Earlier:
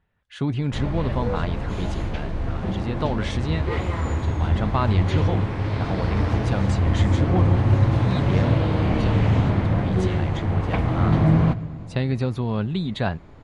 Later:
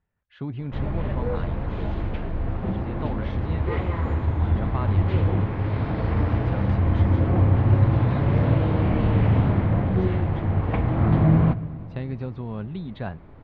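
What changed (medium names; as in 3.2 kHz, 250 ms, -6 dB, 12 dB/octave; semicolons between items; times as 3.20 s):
speech -7.0 dB; master: add distance through air 320 m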